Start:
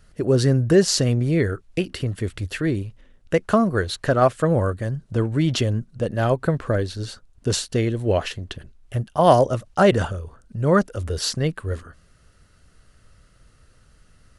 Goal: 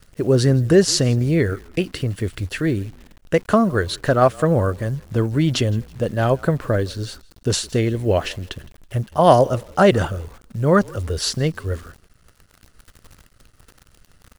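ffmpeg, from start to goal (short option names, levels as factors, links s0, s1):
-filter_complex "[0:a]asplit=3[s0][s1][s2];[s1]adelay=164,afreqshift=-42,volume=0.0631[s3];[s2]adelay=328,afreqshift=-84,volume=0.0195[s4];[s0][s3][s4]amix=inputs=3:normalize=0,acrusher=bits=9:dc=4:mix=0:aa=0.000001,volume=1.26"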